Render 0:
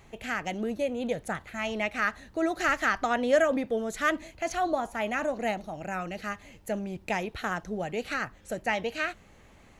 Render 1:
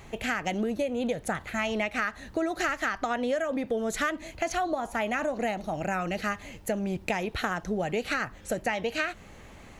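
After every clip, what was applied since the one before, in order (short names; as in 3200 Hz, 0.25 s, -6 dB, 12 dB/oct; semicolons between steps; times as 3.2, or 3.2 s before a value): compressor 12:1, threshold -32 dBFS, peak gain reduction 15 dB; gain +7 dB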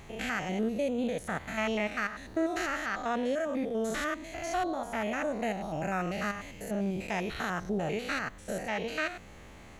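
stepped spectrum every 0.1 s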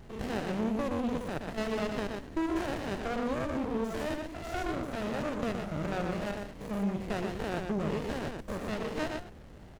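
echo 0.12 s -4.5 dB; running maximum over 33 samples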